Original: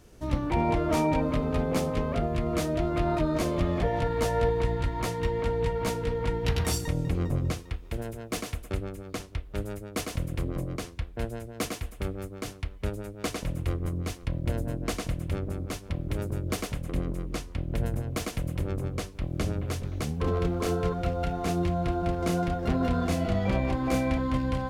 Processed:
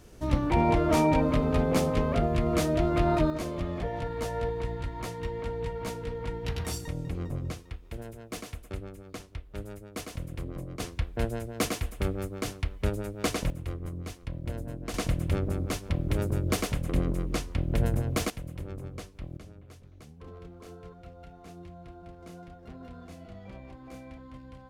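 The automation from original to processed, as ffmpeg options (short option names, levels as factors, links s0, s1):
-af "asetnsamples=n=441:p=0,asendcmd='3.3 volume volume -6dB;10.8 volume volume 3dB;13.5 volume volume -6dB;14.94 volume volume 3dB;18.3 volume volume -8dB;19.37 volume volume -19dB',volume=1.26"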